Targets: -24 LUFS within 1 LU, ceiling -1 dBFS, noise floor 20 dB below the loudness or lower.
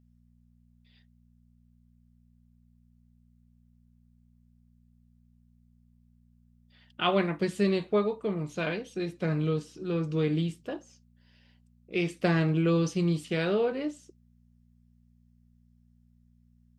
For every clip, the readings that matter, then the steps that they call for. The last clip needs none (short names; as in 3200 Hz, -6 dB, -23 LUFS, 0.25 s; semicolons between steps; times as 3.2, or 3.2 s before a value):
hum 60 Hz; harmonics up to 240 Hz; hum level -60 dBFS; loudness -29.0 LUFS; peak -12.5 dBFS; loudness target -24.0 LUFS
-> de-hum 60 Hz, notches 4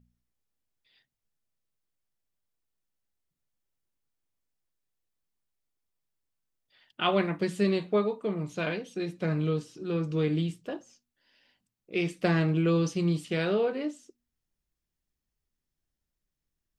hum none; loudness -29.0 LUFS; peak -12.5 dBFS; loudness target -24.0 LUFS
-> gain +5 dB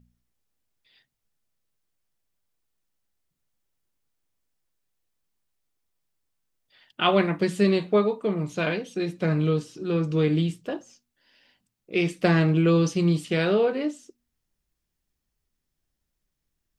loudness -24.0 LUFS; peak -7.5 dBFS; noise floor -81 dBFS